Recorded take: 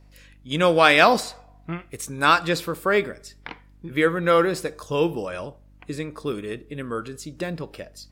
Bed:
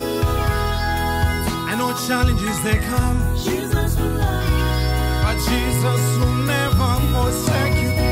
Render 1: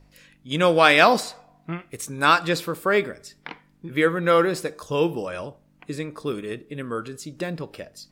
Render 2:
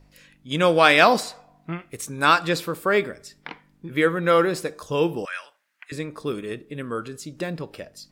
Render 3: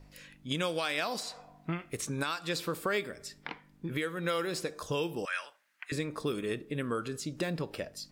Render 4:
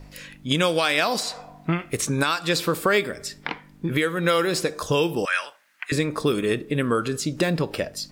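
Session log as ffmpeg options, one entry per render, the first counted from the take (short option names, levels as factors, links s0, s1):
-af "bandreject=f=50:t=h:w=4,bandreject=f=100:t=h:w=4"
-filter_complex "[0:a]asettb=1/sr,asplit=3[s0][s1][s2];[s0]atrim=end=5.254[s3];[s1]atrim=start=5.25:end=5.92,asetpts=PTS-STARTPTS,afade=t=in:d=0.004:c=qsin,afade=t=out:st=0.666:d=0.004:c=qsin,highpass=f=1700:t=q:w=2.8[s4];[s2]atrim=start=5.916[s5];[s3][s4]acrossfade=d=0.004:c1=hsin:c2=qsin[s6];[s6][s5]acrossfade=d=0.004:c1=qsin:c2=hsin"
-filter_complex "[0:a]acrossover=split=2900|7200[s0][s1][s2];[s0]acompressor=threshold=0.0316:ratio=4[s3];[s1]acompressor=threshold=0.02:ratio=4[s4];[s2]acompressor=threshold=0.00447:ratio=4[s5];[s3][s4][s5]amix=inputs=3:normalize=0,alimiter=limit=0.1:level=0:latency=1:release=459"
-af "volume=3.55"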